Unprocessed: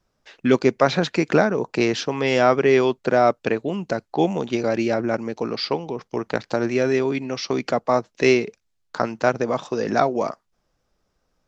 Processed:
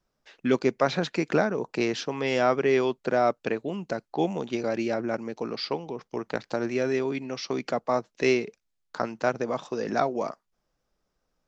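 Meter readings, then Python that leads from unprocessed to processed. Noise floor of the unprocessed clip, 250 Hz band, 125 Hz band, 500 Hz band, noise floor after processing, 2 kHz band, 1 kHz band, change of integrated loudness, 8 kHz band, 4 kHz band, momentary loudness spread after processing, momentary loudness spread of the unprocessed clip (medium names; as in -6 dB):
-72 dBFS, -6.0 dB, -7.0 dB, -6.0 dB, -78 dBFS, -6.0 dB, -6.0 dB, -6.0 dB, no reading, -6.0 dB, 9 LU, 9 LU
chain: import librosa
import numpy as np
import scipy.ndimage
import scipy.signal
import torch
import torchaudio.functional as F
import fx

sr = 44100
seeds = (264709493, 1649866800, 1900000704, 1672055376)

y = fx.peak_eq(x, sr, hz=90.0, db=-10.0, octaves=0.41)
y = y * librosa.db_to_amplitude(-6.0)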